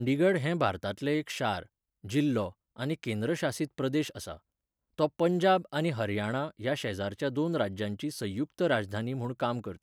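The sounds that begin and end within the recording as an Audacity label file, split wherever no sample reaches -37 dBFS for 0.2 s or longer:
2.050000	2.490000	sound
2.790000	4.340000	sound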